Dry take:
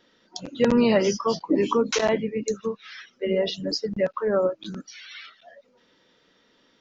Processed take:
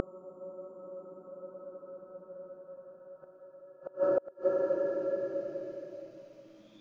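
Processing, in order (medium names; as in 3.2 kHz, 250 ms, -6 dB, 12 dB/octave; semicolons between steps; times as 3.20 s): Paulstretch 44×, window 0.10 s, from 4.43 s; inverted gate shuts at -23 dBFS, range -32 dB; trim +6.5 dB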